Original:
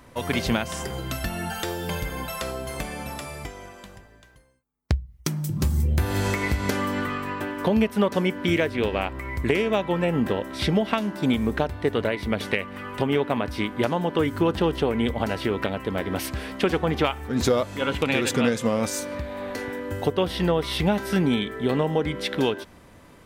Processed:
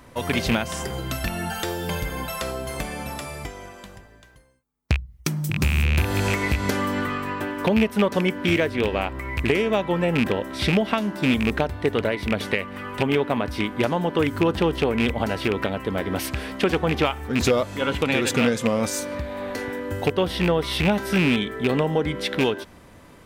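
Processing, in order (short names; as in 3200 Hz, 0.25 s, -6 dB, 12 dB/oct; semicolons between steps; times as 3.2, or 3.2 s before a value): rattling part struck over -22 dBFS, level -14 dBFS; in parallel at -12 dB: soft clip -21 dBFS, distortion -10 dB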